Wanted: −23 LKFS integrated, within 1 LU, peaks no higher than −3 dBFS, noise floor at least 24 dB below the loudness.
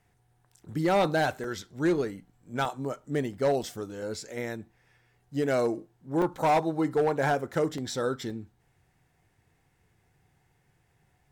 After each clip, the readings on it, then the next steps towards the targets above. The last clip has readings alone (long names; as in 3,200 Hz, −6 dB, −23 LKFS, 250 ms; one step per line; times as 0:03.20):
share of clipped samples 0.9%; peaks flattened at −19.0 dBFS; number of dropouts 6; longest dropout 2.9 ms; integrated loudness −29.0 LKFS; sample peak −19.0 dBFS; target loudness −23.0 LKFS
→ clipped peaks rebuilt −19 dBFS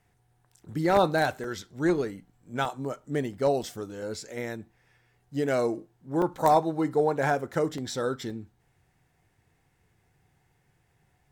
share of clipped samples 0.0%; number of dropouts 6; longest dropout 2.9 ms
→ repair the gap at 0:01.44/0:02.65/0:03.63/0:06.22/0:07.78/0:08.30, 2.9 ms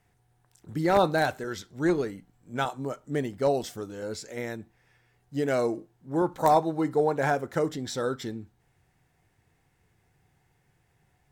number of dropouts 0; integrated loudness −28.5 LKFS; sample peak −10.0 dBFS; target loudness −23.0 LKFS
→ level +5.5 dB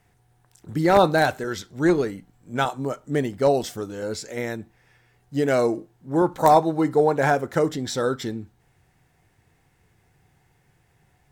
integrated loudness −23.0 LKFS; sample peak −4.5 dBFS; background noise floor −64 dBFS